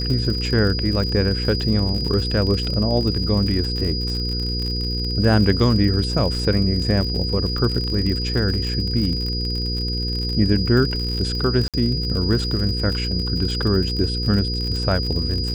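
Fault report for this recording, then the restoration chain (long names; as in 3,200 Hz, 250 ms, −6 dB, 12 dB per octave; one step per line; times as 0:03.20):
surface crackle 54 per second −25 dBFS
mains hum 60 Hz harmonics 8 −25 dBFS
whistle 4,900 Hz −26 dBFS
0:11.68–0:11.74: drop-out 57 ms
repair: click removal
notch filter 4,900 Hz, Q 30
hum removal 60 Hz, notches 8
repair the gap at 0:11.68, 57 ms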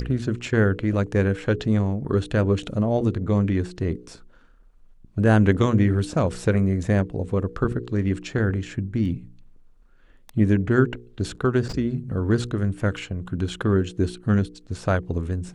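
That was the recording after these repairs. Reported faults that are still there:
none of them is left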